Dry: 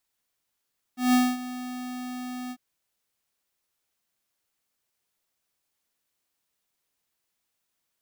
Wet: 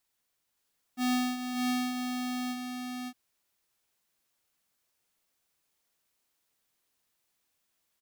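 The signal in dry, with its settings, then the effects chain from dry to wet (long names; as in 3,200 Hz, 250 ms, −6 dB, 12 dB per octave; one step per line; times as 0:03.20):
note with an ADSR envelope square 250 Hz, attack 165 ms, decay 234 ms, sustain −16.5 dB, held 1.54 s, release 57 ms −18.5 dBFS
on a send: single-tap delay 565 ms −3 dB
on the sum: downward compressor 4 to 1, threshold −30 dBFS
dynamic equaliser 3,800 Hz, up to +5 dB, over −51 dBFS, Q 0.95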